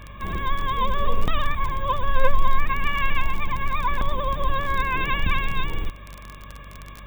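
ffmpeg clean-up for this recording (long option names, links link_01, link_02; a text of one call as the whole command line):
ffmpeg -i in.wav -af "adeclick=threshold=4,bandreject=frequency=48.9:width_type=h:width=4,bandreject=frequency=97.8:width_type=h:width=4,bandreject=frequency=146.7:width_type=h:width=4,bandreject=frequency=195.6:width_type=h:width=4,bandreject=frequency=244.5:width_type=h:width=4" out.wav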